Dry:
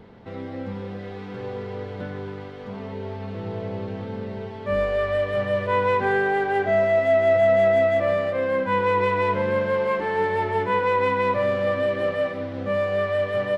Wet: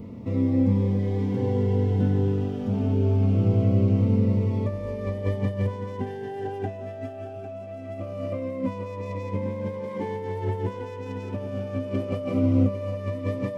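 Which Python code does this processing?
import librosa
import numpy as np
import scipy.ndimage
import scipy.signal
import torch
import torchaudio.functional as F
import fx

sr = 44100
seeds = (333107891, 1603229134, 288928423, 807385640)

p1 = fx.self_delay(x, sr, depth_ms=0.094)
p2 = fx.high_shelf(p1, sr, hz=3700.0, db=7.5)
p3 = fx.over_compress(p2, sr, threshold_db=-29.0, ratio=-1.0)
p4 = fx.graphic_eq_15(p3, sr, hz=(100, 250, 1600, 4000), db=(11, 11, -11, -11))
p5 = p4 + fx.echo_thinned(p4, sr, ms=804, feedback_pct=53, hz=220.0, wet_db=-11.0, dry=0)
p6 = fx.notch_cascade(p5, sr, direction='falling', hz=0.23)
y = F.gain(torch.from_numpy(p6), -2.5).numpy()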